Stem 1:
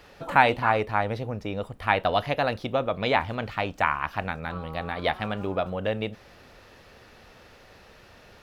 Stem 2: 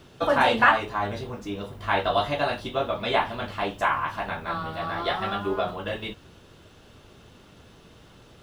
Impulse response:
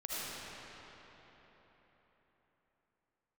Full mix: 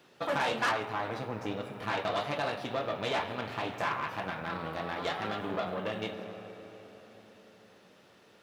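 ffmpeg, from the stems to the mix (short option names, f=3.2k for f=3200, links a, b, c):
-filter_complex "[0:a]agate=range=-7dB:threshold=-46dB:ratio=16:detection=peak,acompressor=threshold=-27dB:ratio=6,volume=-3dB,asplit=2[a][b];[b]volume=-6dB[c];[1:a]highpass=f=200:p=1,volume=-5dB[d];[2:a]atrim=start_sample=2205[e];[c][e]afir=irnorm=-1:irlink=0[f];[a][d][f]amix=inputs=3:normalize=0,aeval=exprs='(tanh(15.8*val(0)+0.75)-tanh(0.75))/15.8':c=same,highpass=140"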